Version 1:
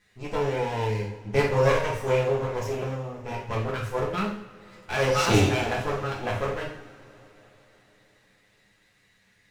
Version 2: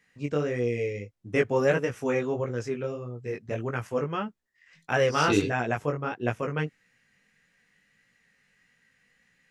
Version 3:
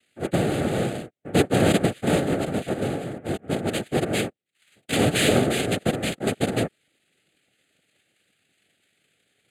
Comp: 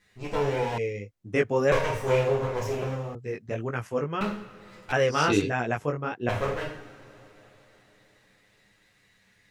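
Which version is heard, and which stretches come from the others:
1
0:00.78–0:01.72: punch in from 2
0:03.15–0:04.21: punch in from 2
0:04.92–0:06.29: punch in from 2
not used: 3

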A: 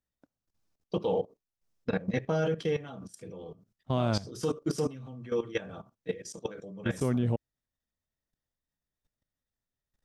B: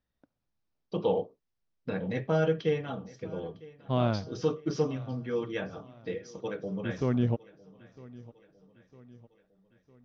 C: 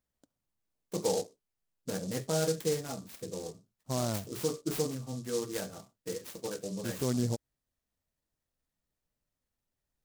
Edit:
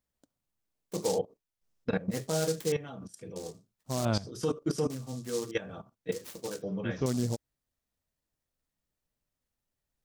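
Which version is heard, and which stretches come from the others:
C
0:01.16–0:02.13: punch in from A, crossfade 0.06 s
0:02.72–0:03.36: punch in from A
0:04.05–0:04.90: punch in from A
0:05.51–0:06.12: punch in from A
0:06.62–0:07.06: punch in from B

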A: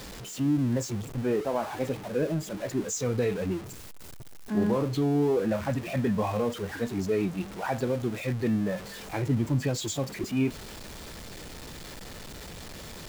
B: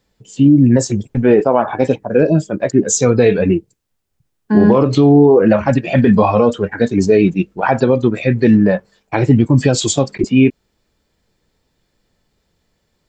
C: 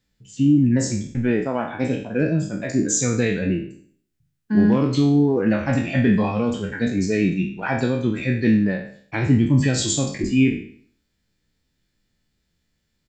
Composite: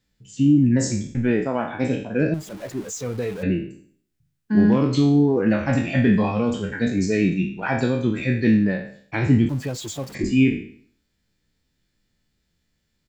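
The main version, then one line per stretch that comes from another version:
C
0:02.34–0:03.43: punch in from A
0:09.49–0:10.15: punch in from A
not used: B

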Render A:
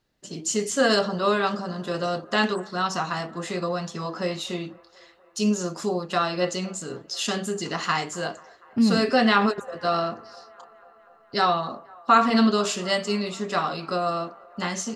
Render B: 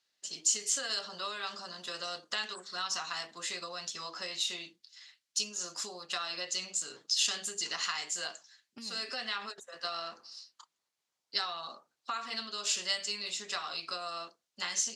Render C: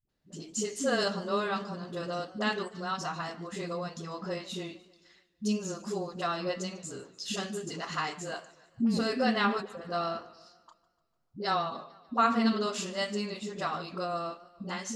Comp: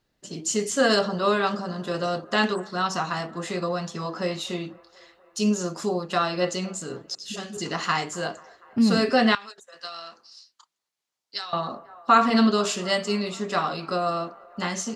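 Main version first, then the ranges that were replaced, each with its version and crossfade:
A
0:07.15–0:07.57: punch in from C
0:09.35–0:11.53: punch in from B

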